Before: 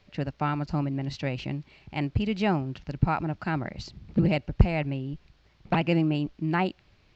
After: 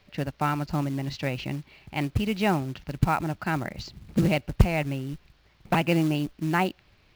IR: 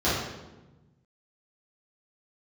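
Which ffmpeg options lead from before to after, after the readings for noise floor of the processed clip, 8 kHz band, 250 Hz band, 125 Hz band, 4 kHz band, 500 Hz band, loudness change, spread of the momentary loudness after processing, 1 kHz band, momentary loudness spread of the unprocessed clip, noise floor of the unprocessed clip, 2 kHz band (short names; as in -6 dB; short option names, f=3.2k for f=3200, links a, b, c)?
-61 dBFS, n/a, +0.5 dB, 0.0 dB, +3.0 dB, +1.5 dB, +1.0 dB, 11 LU, +2.5 dB, 11 LU, -62 dBFS, +3.0 dB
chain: -af "equalizer=f=1.8k:w=0.36:g=3,acrusher=bits=5:mode=log:mix=0:aa=0.000001"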